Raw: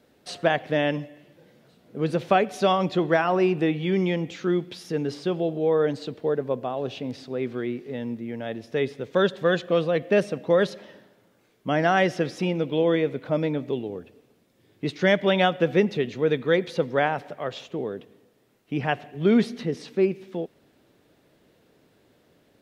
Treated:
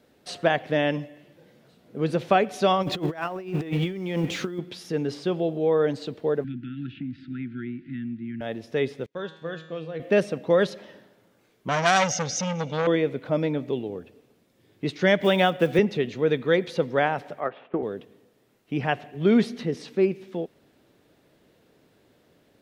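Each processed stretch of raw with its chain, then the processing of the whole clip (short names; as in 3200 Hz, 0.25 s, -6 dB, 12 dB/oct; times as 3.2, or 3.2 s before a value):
2.82–4.59 G.711 law mismatch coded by mu + negative-ratio compressor -27 dBFS, ratio -0.5
6.44–8.41 brick-wall FIR band-stop 350–1300 Hz + air absorption 490 m + three-band squash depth 100%
9.06–10 high shelf 4900 Hz -4 dB + gate -43 dBFS, range -19 dB + resonator 160 Hz, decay 0.71 s, mix 80%
11.68–12.87 synth low-pass 6300 Hz, resonance Q 12 + comb 1.4 ms, depth 96% + core saturation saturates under 2300 Hz
15.2–15.79 block floating point 7-bit + three-band squash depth 40%
17.4–17.83 block floating point 7-bit + speaker cabinet 230–2100 Hz, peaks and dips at 500 Hz -3 dB, 790 Hz +4 dB, 1300 Hz +4 dB + transient shaper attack +8 dB, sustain -1 dB
whole clip: dry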